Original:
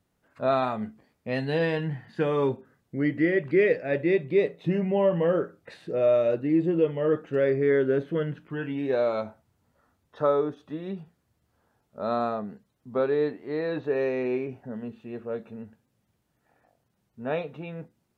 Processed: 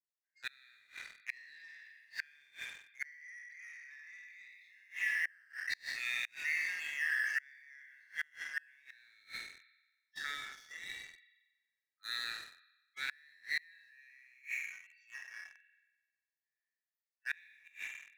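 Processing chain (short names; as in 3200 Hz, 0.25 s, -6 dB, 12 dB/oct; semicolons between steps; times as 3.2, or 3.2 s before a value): spectral trails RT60 1.09 s; steep high-pass 1700 Hz 72 dB/oct; spectral noise reduction 24 dB; spring tank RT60 1.3 s, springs 42 ms, chirp 20 ms, DRR 6 dB; transient shaper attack -1 dB, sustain +6 dB; fixed phaser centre 3000 Hz, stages 6; sample leveller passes 2; flipped gate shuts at -29 dBFS, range -32 dB; gain +5.5 dB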